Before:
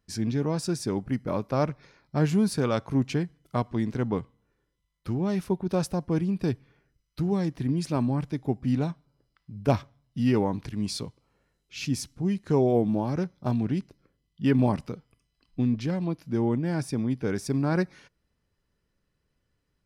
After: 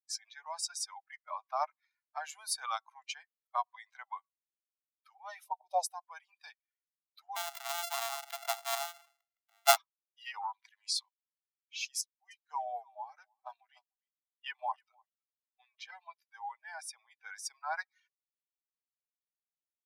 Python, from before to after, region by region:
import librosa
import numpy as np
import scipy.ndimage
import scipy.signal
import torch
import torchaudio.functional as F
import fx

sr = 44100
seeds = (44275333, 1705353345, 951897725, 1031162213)

y = fx.chain(x, sr, fx.peak_eq(hz=490.0, db=13.0, octaves=1.4),
    fx.fixed_phaser(hz=620.0, stages=4), at=(5.45, 5.91))
y = fx.chain(y, sr, fx.sample_sort(block=64),
    fx.sustainer(db_per_s=65.0), at=(7.36, 9.76))
y = fx.chain(y, sr, fx.highpass(hz=630.0, slope=12),
    fx.doppler_dist(depth_ms=0.26), at=(10.41, 11.06))
y = fx.chain(y, sr, fx.echo_single(ms=299, db=-11.5),
    fx.upward_expand(threshold_db=-41.0, expansion=1.5), at=(12.01, 15.74))
y = fx.bin_expand(y, sr, power=2.0)
y = scipy.signal.sosfilt(scipy.signal.butter(12, 700.0, 'highpass', fs=sr, output='sos'), y)
y = fx.dynamic_eq(y, sr, hz=2000.0, q=1.1, threshold_db=-52.0, ratio=4.0, max_db=-7)
y = y * librosa.db_to_amplitude(6.0)